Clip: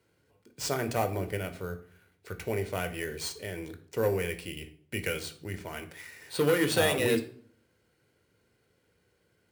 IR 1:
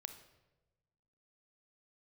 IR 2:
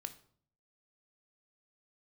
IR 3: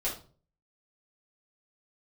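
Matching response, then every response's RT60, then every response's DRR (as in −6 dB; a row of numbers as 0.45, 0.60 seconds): 2; 1.1, 0.55, 0.40 seconds; 8.5, 8.5, −7.5 decibels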